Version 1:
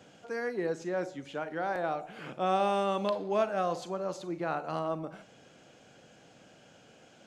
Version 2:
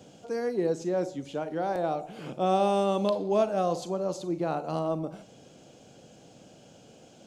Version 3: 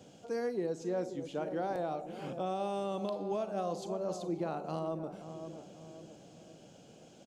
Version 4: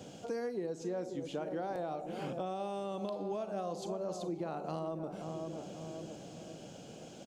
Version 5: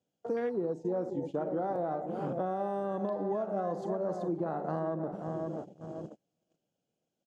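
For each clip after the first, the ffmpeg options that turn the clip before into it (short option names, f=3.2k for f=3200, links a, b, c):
-af "equalizer=f=1.7k:w=0.89:g=-12.5,volume=6.5dB"
-filter_complex "[0:a]asplit=2[a][b];[b]adelay=534,lowpass=f=860:p=1,volume=-10.5dB,asplit=2[c][d];[d]adelay=534,lowpass=f=860:p=1,volume=0.52,asplit=2[e][f];[f]adelay=534,lowpass=f=860:p=1,volume=0.52,asplit=2[g][h];[h]adelay=534,lowpass=f=860:p=1,volume=0.52,asplit=2[i][j];[j]adelay=534,lowpass=f=860:p=1,volume=0.52,asplit=2[k][l];[l]adelay=534,lowpass=f=860:p=1,volume=0.52[m];[a][c][e][g][i][k][m]amix=inputs=7:normalize=0,alimiter=limit=-21.5dB:level=0:latency=1:release=405,volume=-4dB"
-af "acompressor=threshold=-44dB:ratio=3,volume=6.5dB"
-af "agate=range=-24dB:threshold=-43dB:ratio=16:detection=peak,afwtdn=0.00355,volume=5dB"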